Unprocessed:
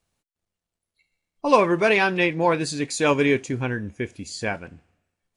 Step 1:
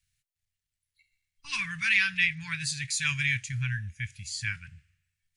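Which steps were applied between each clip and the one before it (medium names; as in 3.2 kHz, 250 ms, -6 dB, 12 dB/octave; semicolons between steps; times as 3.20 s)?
elliptic band-stop 130–1800 Hz, stop band 60 dB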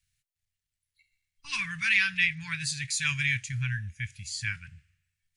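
no audible change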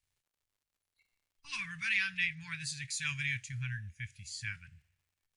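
crackle 130 per s -60 dBFS; trim -7.5 dB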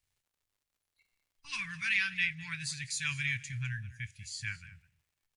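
delay 205 ms -18 dB; trim +1.5 dB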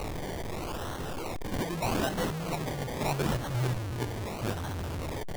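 one-bit delta coder 16 kbps, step -35 dBFS; decimation with a swept rate 26×, swing 60% 0.8 Hz; trim +7 dB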